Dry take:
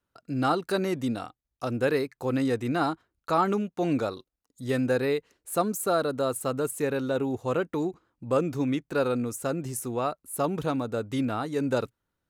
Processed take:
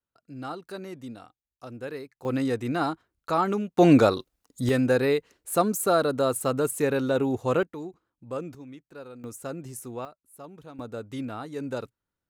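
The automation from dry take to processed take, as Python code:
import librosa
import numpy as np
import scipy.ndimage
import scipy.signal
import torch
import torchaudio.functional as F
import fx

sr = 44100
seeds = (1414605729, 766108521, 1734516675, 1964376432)

y = fx.gain(x, sr, db=fx.steps((0.0, -11.0), (2.25, -0.5), (3.78, 10.0), (4.69, 3.0), (7.63, -8.5), (8.55, -17.0), (9.24, -6.0), (10.05, -17.0), (10.79, -6.0)))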